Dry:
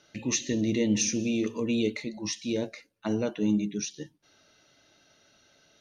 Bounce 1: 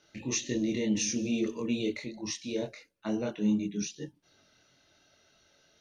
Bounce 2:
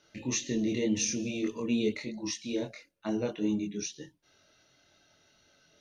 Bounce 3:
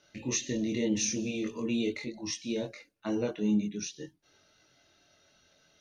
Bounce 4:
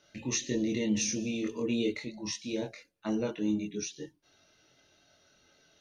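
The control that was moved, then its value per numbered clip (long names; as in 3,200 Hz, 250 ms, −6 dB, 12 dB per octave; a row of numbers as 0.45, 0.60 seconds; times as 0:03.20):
multi-voice chorus, speed: 2.7, 1.8, 0.43, 0.22 Hertz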